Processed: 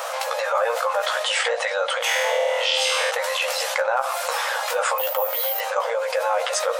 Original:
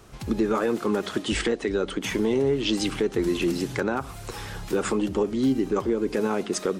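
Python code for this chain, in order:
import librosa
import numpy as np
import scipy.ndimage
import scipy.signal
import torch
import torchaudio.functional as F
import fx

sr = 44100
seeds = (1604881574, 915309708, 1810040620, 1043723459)

y = fx.tilt_eq(x, sr, slope=-3.0)
y = fx.room_flutter(y, sr, wall_m=4.3, rt60_s=1.1, at=(1.98, 3.1))
y = fx.resample_bad(y, sr, factor=3, down='none', up='hold', at=(4.98, 5.59))
y = fx.brickwall_highpass(y, sr, low_hz=490.0)
y = fx.high_shelf(y, sr, hz=9900.0, db=9.5)
y = fx.doubler(y, sr, ms=15.0, db=-5)
y = fx.env_flatten(y, sr, amount_pct=70)
y = y * librosa.db_to_amplitude(3.5)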